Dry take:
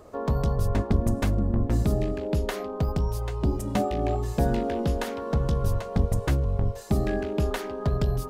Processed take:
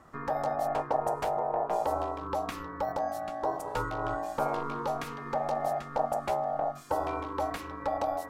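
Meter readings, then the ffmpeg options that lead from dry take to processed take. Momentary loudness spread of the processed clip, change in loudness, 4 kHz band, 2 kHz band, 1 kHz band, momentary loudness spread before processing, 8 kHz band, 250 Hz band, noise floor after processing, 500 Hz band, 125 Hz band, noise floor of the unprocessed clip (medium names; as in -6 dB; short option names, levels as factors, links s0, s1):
4 LU, -5.0 dB, -6.5 dB, -2.0 dB, +5.5 dB, 4 LU, -7.0 dB, -12.5 dB, -43 dBFS, -1.5 dB, -19.0 dB, -36 dBFS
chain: -af "aeval=exprs='val(0)*sin(2*PI*700*n/s)':c=same,volume=0.631"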